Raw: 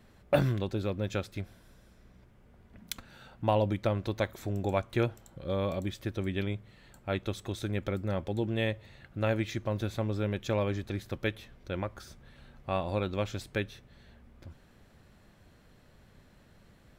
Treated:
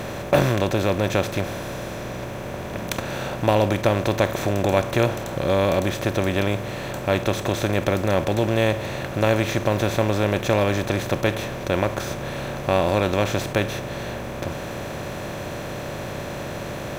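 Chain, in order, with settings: spectral levelling over time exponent 0.4; peaking EQ 6.2 kHz +4 dB 0.25 oct; trim +4.5 dB

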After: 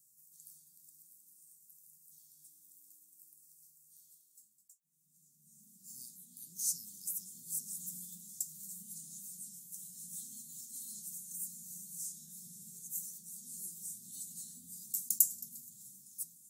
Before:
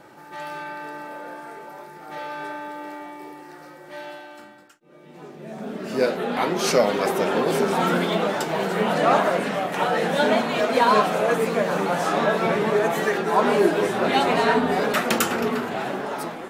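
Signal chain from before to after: elliptic band-stop 170–7100 Hz, stop band 50 dB; pre-emphasis filter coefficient 0.97

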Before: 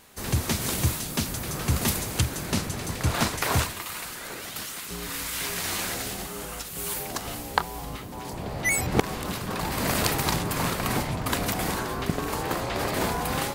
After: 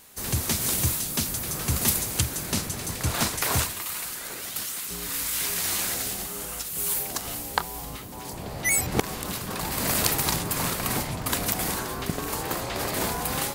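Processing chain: treble shelf 5.2 kHz +9.5 dB; trim -2.5 dB

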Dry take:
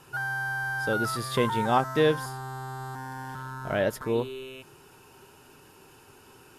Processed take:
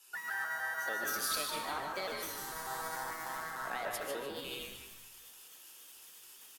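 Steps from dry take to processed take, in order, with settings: pitch shift switched off and on +3.5 st, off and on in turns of 148 ms; Bessel high-pass 310 Hz, order 2; tilt EQ +3 dB/octave; compression 8:1, threshold -38 dBFS, peak gain reduction 18.5 dB; frequency-shifting echo 150 ms, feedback 40%, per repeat -140 Hz, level -5 dB; algorithmic reverb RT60 1.2 s, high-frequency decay 0.65×, pre-delay 90 ms, DRR 3 dB; three bands expanded up and down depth 100%

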